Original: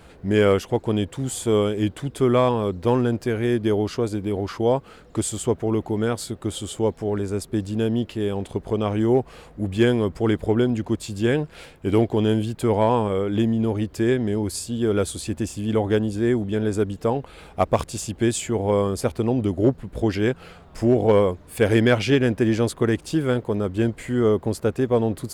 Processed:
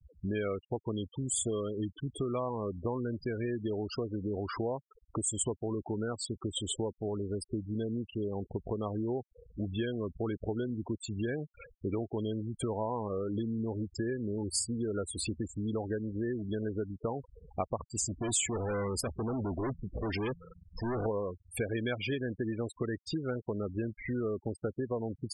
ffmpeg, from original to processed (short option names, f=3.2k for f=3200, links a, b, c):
-filter_complex "[0:a]asettb=1/sr,asplit=3[a][b][c];[a]atrim=end=2.944[d];[b]atrim=start=2.94:end=4.66,asetpts=PTS-STARTPTS,afade=t=in:d=0.004:c=qsin,afade=t=out:st=1.716:d=0.004:c=qsin,aeval=exprs='val(0)+0.5*0.0119*sgn(val(0))':c=same[e];[c]atrim=start=4.656[f];[d][e]acrossfade=d=0.004:c1=hsin:c2=qsin[g];[g][f]acrossfade=d=0.004:c1=qsin:c2=hsin,asettb=1/sr,asplit=3[h][i][j];[h]atrim=end=18.064[k];[i]atrim=start=18.06:end=21.06,asetpts=PTS-STARTPTS,afade=t=in:d=0.004:c=qsin,afade=t=out:st=2.996:d=0.004:c=qsin,asoftclip=type=hard:threshold=-26dB[l];[j]atrim=start=21.056[m];[k][l]acrossfade=d=0.004:c1=hsin:c2=qsin[n];[n][m]acrossfade=d=0.004:c1=qsin:c2=hsin,acompressor=threshold=-28dB:ratio=6,afftfilt=real='re*gte(hypot(re,im),0.0282)':imag='im*gte(hypot(re,im),0.0282)':win_size=1024:overlap=0.75,tiltshelf=f=1.5k:g=-4"